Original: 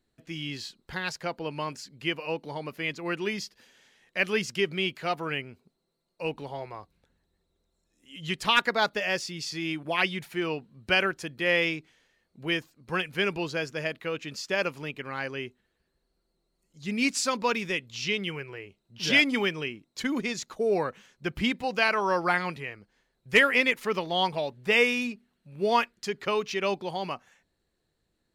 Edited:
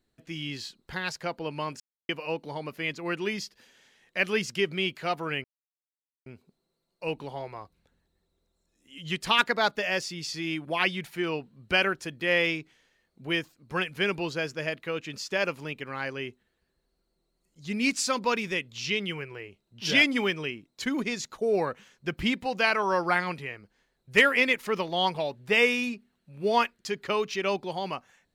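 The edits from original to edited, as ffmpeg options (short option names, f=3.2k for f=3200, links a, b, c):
-filter_complex "[0:a]asplit=4[a][b][c][d];[a]atrim=end=1.8,asetpts=PTS-STARTPTS,afade=t=out:st=1.796:d=0.004:c=hsin[e];[b]atrim=start=1.8:end=2.09,asetpts=PTS-STARTPTS,volume=0[f];[c]atrim=start=2.09:end=5.44,asetpts=PTS-STARTPTS,afade=t=in:d=0.004:c=hsin,afade=t=out:st=3.346:d=0.004:c=hsin,apad=pad_dur=0.82[g];[d]atrim=start=5.44,asetpts=PTS-STARTPTS,afade=t=in:d=0.004:c=hsin[h];[e][f][g][h]concat=n=4:v=0:a=1"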